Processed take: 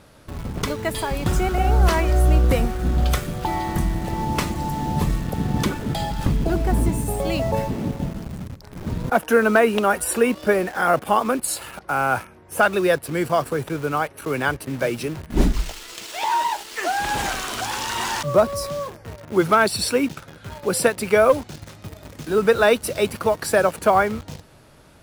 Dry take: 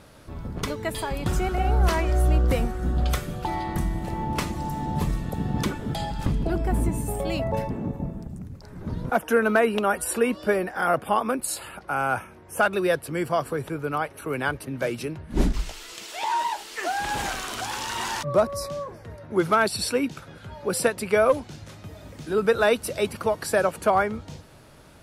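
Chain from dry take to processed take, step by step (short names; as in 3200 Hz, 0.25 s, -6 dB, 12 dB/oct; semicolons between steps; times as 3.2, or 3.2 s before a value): in parallel at -4.5 dB: bit-crush 6-bit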